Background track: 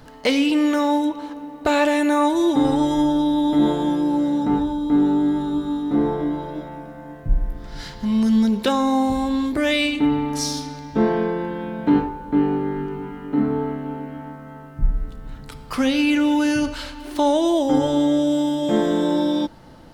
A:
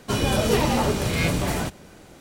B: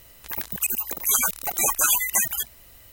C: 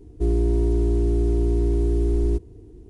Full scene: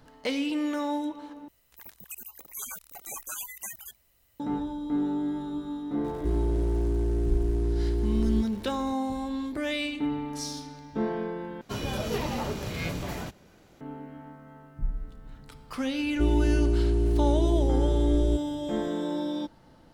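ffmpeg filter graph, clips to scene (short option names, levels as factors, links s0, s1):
-filter_complex "[3:a]asplit=2[s0][s1];[0:a]volume=0.299[s2];[s0]aeval=exprs='val(0)+0.5*0.0158*sgn(val(0))':c=same[s3];[1:a]equalizer=f=9000:w=3.7:g=-12.5[s4];[s2]asplit=3[s5][s6][s7];[s5]atrim=end=1.484[s8];[2:a]atrim=end=2.92,asetpts=PTS-STARTPTS,volume=0.141[s9];[s6]atrim=start=4.396:end=11.614[s10];[s4]atrim=end=2.2,asetpts=PTS-STARTPTS,volume=0.335[s11];[s7]atrim=start=13.806[s12];[s3]atrim=end=2.89,asetpts=PTS-STARTPTS,volume=0.473,afade=t=in:d=0.004:c=hsin,afade=t=out:st=2.886:d=0.004:c=hsin,adelay=6040[s13];[s1]atrim=end=2.89,asetpts=PTS-STARTPTS,volume=0.668,afade=t=in:d=0.004:c=hsin,afade=t=out:st=2.886:d=0.004:c=hsin,adelay=15990[s14];[s8][s9]acrossfade=d=0.004:c1=hsin:c2=hsin[s15];[s15][s10]acrossfade=d=0.004:c1=hsin:c2=hsin[s16];[s16][s11]acrossfade=d=0.004:c1=hsin:c2=hsin[s17];[s17][s12]acrossfade=d=0.004:c1=hsin:c2=hsin[s18];[s18][s13][s14]amix=inputs=3:normalize=0"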